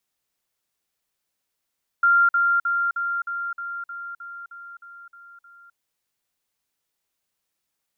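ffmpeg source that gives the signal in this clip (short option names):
-f lavfi -i "aevalsrc='pow(10,(-13.5-3*floor(t/0.31))/20)*sin(2*PI*1390*t)*clip(min(mod(t,0.31),0.26-mod(t,0.31))/0.005,0,1)':d=3.72:s=44100"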